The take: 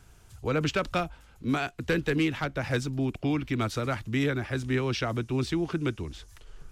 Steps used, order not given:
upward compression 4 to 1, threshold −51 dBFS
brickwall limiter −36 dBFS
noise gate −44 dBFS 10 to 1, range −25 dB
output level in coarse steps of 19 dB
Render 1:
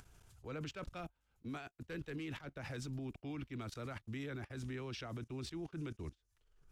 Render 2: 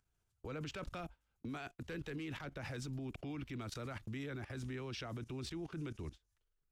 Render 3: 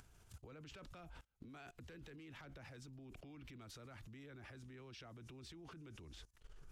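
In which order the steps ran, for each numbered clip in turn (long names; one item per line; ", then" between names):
output level in coarse steps, then brickwall limiter, then noise gate, then upward compression
upward compression, then output level in coarse steps, then noise gate, then brickwall limiter
noise gate, then brickwall limiter, then output level in coarse steps, then upward compression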